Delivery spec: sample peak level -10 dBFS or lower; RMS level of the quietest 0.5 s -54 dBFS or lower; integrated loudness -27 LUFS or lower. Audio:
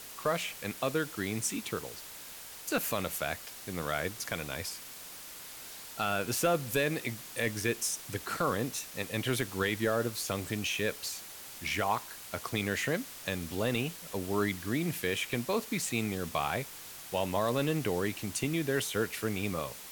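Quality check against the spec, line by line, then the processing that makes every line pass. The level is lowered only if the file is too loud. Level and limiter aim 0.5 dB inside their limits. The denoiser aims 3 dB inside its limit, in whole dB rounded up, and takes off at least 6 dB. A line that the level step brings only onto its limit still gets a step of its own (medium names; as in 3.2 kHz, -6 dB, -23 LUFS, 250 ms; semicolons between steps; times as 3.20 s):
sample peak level -17.5 dBFS: pass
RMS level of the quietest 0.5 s -47 dBFS: fail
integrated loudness -33.0 LUFS: pass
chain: noise reduction 10 dB, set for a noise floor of -47 dBFS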